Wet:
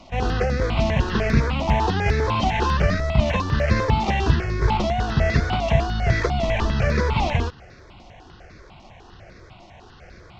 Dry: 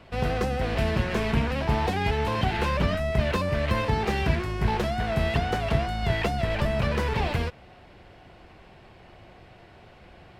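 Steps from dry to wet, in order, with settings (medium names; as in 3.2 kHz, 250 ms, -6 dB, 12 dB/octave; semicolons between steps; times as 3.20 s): CVSD coder 32 kbps; stepped phaser 10 Hz 440–3000 Hz; trim +7.5 dB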